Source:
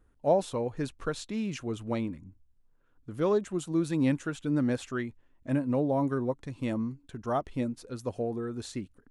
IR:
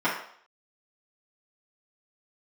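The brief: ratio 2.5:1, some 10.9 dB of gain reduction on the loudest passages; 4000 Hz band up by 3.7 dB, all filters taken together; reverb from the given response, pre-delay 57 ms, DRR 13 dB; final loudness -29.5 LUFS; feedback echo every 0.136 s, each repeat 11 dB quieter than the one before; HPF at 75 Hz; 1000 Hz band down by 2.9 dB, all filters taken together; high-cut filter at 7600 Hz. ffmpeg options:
-filter_complex "[0:a]highpass=75,lowpass=7.6k,equalizer=f=1k:t=o:g=-4.5,equalizer=f=4k:t=o:g=5,acompressor=threshold=-39dB:ratio=2.5,aecho=1:1:136|272|408:0.282|0.0789|0.0221,asplit=2[a][b];[1:a]atrim=start_sample=2205,adelay=57[c];[b][c]afir=irnorm=-1:irlink=0,volume=-27.5dB[d];[a][d]amix=inputs=2:normalize=0,volume=10.5dB"

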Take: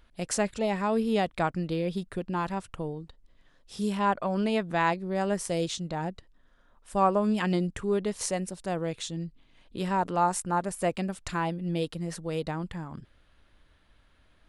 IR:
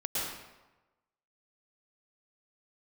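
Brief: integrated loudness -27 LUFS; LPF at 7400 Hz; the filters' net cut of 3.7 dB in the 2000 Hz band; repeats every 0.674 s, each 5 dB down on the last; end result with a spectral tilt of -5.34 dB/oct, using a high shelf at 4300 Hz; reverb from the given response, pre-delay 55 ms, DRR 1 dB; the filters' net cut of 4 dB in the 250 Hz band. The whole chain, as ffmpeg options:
-filter_complex "[0:a]lowpass=7.4k,equalizer=f=250:t=o:g=-6,equalizer=f=2k:t=o:g=-3.5,highshelf=f=4.3k:g=-6,aecho=1:1:674|1348|2022|2696|3370|4044|4718:0.562|0.315|0.176|0.0988|0.0553|0.031|0.0173,asplit=2[a][b];[1:a]atrim=start_sample=2205,adelay=55[c];[b][c]afir=irnorm=-1:irlink=0,volume=-7.5dB[d];[a][d]amix=inputs=2:normalize=0,volume=1.5dB"

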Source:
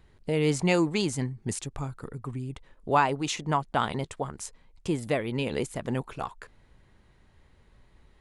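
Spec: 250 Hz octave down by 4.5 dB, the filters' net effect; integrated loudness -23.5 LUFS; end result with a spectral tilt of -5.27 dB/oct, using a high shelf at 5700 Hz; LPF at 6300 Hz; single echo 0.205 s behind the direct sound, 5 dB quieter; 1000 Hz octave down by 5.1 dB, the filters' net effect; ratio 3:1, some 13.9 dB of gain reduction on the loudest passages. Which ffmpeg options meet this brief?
-af "lowpass=6.3k,equalizer=f=250:t=o:g=-6.5,equalizer=f=1k:t=o:g=-6,highshelf=f=5.7k:g=-3,acompressor=threshold=-41dB:ratio=3,aecho=1:1:205:0.562,volume=18.5dB"

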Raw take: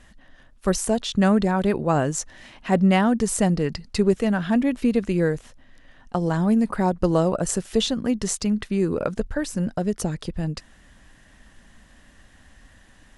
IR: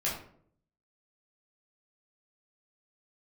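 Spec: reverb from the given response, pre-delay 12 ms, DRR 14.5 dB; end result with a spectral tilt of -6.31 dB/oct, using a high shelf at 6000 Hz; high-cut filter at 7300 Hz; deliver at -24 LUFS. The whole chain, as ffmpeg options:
-filter_complex "[0:a]lowpass=7.3k,highshelf=f=6k:g=-5.5,asplit=2[a][b];[1:a]atrim=start_sample=2205,adelay=12[c];[b][c]afir=irnorm=-1:irlink=0,volume=-21dB[d];[a][d]amix=inputs=2:normalize=0,volume=-1dB"

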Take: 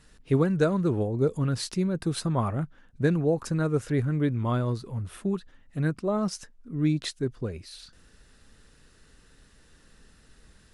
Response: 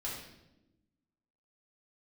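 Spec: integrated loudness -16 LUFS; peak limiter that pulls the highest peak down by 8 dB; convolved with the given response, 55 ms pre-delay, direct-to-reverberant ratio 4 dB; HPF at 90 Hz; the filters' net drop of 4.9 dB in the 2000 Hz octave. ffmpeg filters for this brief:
-filter_complex "[0:a]highpass=90,equalizer=f=2k:t=o:g=-7,alimiter=limit=-19.5dB:level=0:latency=1,asplit=2[a][b];[1:a]atrim=start_sample=2205,adelay=55[c];[b][c]afir=irnorm=-1:irlink=0,volume=-5.5dB[d];[a][d]amix=inputs=2:normalize=0,volume=12dB"

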